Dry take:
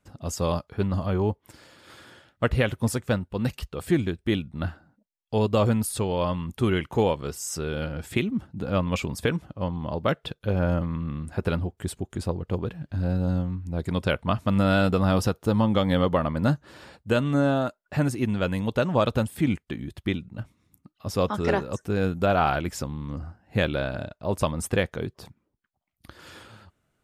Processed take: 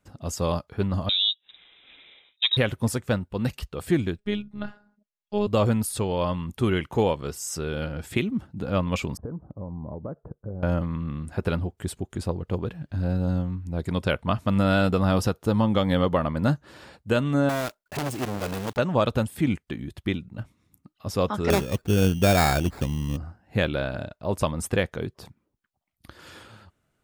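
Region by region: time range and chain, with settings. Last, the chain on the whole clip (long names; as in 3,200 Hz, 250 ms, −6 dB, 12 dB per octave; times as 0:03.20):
0:01.09–0:02.57: high-shelf EQ 2,300 Hz −12 dB + voice inversion scrambler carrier 3,800 Hz
0:04.18–0:05.47: phases set to zero 207 Hz + high-frequency loss of the air 60 metres
0:09.17–0:10.63: Bessel low-pass filter 700 Hz, order 8 + downward compressor 5 to 1, threshold −30 dBFS
0:17.49–0:18.79: one scale factor per block 3 bits + saturating transformer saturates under 1,400 Hz
0:21.50–0:23.17: low-pass filter 6,900 Hz + spectral tilt −2 dB per octave + sample-rate reduction 3,000 Hz
whole clip: no processing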